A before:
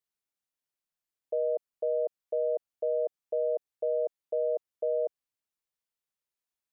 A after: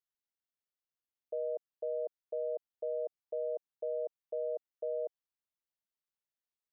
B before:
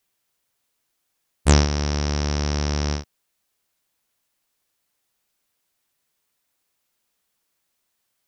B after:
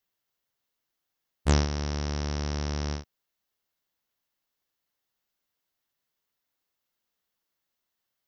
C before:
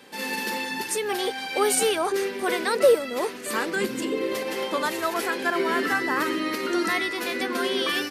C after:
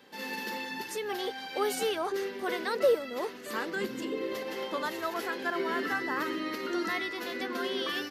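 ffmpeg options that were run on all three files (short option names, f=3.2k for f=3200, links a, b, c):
-af "equalizer=f=9.1k:t=o:w=0.56:g=-11,bandreject=f=2.4k:w=14,volume=-7dB"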